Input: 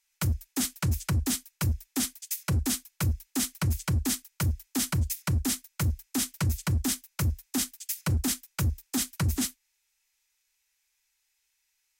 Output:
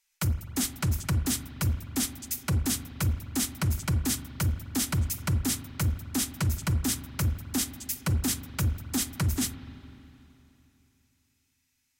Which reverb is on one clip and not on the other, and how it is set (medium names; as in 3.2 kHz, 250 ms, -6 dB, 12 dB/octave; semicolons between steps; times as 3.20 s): spring tank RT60 3.1 s, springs 41/51 ms, chirp 45 ms, DRR 11 dB